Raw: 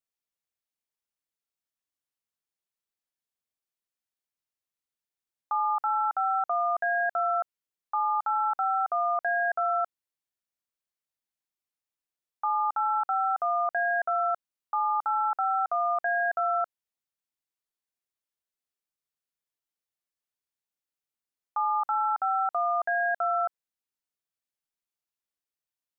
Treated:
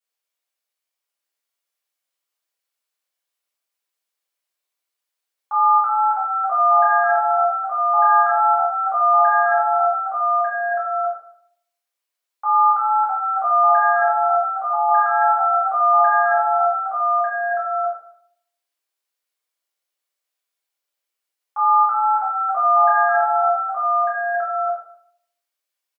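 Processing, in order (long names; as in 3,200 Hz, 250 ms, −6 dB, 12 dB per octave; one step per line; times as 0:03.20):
Bessel high-pass filter 540 Hz, order 4
single-tap delay 1,198 ms −3.5 dB
convolution reverb RT60 0.65 s, pre-delay 4 ms, DRR −8.5 dB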